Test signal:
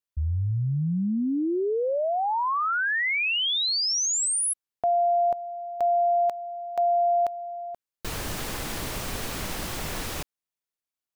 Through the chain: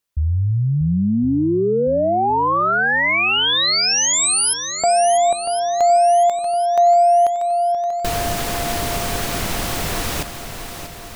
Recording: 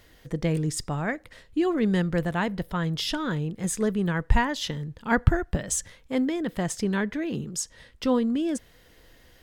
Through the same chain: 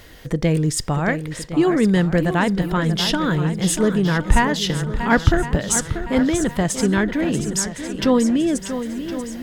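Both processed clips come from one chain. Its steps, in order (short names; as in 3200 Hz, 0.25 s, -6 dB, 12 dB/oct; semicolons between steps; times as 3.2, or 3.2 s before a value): in parallel at -1 dB: compressor, threshold -38 dBFS; on the sum: soft clip -7.5 dBFS; swung echo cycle 1.062 s, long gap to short 1.5:1, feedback 40%, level -10 dB; gain +6 dB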